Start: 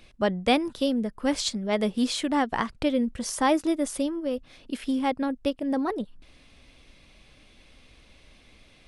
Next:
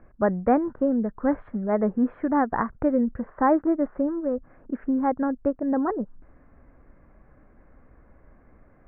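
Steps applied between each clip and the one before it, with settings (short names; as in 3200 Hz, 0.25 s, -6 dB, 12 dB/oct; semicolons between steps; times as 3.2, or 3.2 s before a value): steep low-pass 1700 Hz 48 dB/oct; gain +2.5 dB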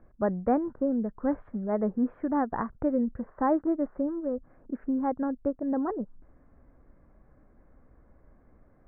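high shelf 2000 Hz -11 dB; gain -4 dB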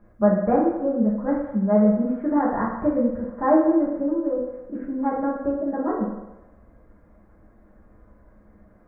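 reverb RT60 1.0 s, pre-delay 5 ms, DRR -5.5 dB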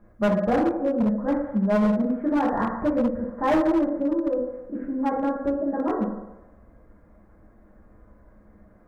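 overloaded stage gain 17 dB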